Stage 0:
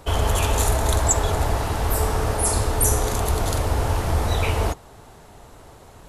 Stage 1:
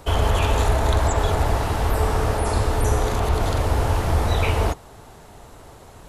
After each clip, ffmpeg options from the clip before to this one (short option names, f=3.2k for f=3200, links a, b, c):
-filter_complex "[0:a]acrossover=split=4400[a][b];[b]acompressor=threshold=-40dB:ratio=4:attack=1:release=60[c];[a][c]amix=inputs=2:normalize=0,volume=1.5dB"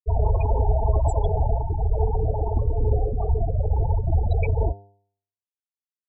-af "afftfilt=real='re*gte(hypot(re,im),0.251)':imag='im*gte(hypot(re,im),0.251)':win_size=1024:overlap=0.75,bandreject=f=99.92:t=h:w=4,bandreject=f=199.84:t=h:w=4,bandreject=f=299.76:t=h:w=4,bandreject=f=399.68:t=h:w=4,bandreject=f=499.6:t=h:w=4,bandreject=f=599.52:t=h:w=4,bandreject=f=699.44:t=h:w=4,bandreject=f=799.36:t=h:w=4,bandreject=f=899.28:t=h:w=4,bandreject=f=999.2:t=h:w=4,bandreject=f=1.09912k:t=h:w=4,bandreject=f=1.19904k:t=h:w=4,bandreject=f=1.29896k:t=h:w=4,bandreject=f=1.39888k:t=h:w=4,bandreject=f=1.4988k:t=h:w=4,bandreject=f=1.59872k:t=h:w=4,bandreject=f=1.69864k:t=h:w=4,bandreject=f=1.79856k:t=h:w=4,bandreject=f=1.89848k:t=h:w=4,bandreject=f=1.9984k:t=h:w=4"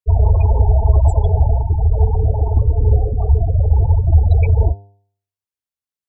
-af "equalizer=f=79:t=o:w=1.3:g=9.5,volume=1.5dB"